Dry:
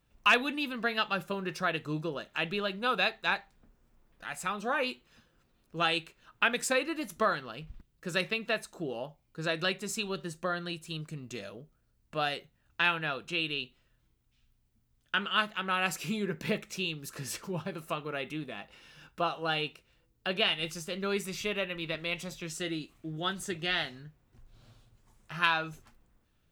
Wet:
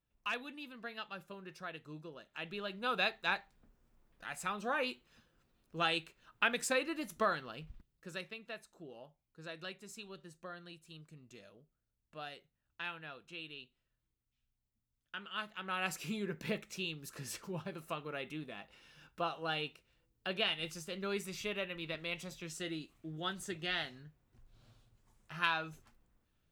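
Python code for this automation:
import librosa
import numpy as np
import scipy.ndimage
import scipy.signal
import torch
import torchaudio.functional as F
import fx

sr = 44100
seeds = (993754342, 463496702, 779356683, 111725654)

y = fx.gain(x, sr, db=fx.line((2.16, -14.5), (3.01, -4.5), (7.68, -4.5), (8.29, -15.0), (15.2, -15.0), (15.88, -6.0)))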